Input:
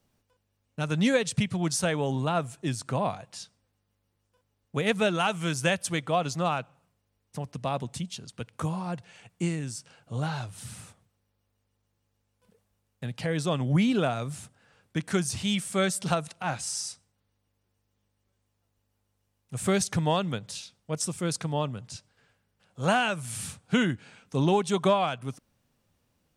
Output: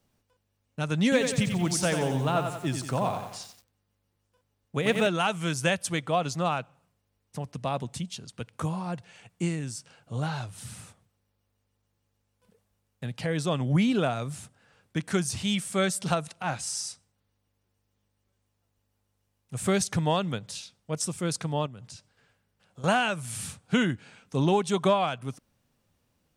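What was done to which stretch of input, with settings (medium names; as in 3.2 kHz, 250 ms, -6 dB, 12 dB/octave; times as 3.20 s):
1.03–5.07 s: bit-crushed delay 90 ms, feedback 55%, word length 8-bit, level -6.5 dB
21.66–22.84 s: compression 10:1, threshold -40 dBFS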